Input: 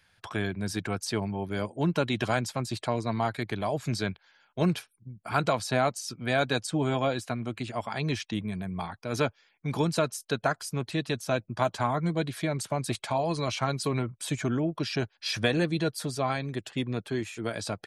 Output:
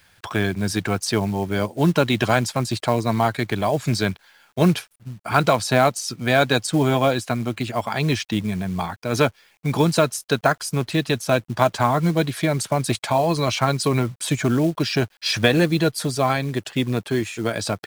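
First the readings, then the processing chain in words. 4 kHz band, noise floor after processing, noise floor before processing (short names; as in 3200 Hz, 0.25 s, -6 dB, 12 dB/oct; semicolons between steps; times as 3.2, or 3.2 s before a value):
+8.5 dB, -60 dBFS, -70 dBFS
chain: companded quantiser 6-bit; gain +8.5 dB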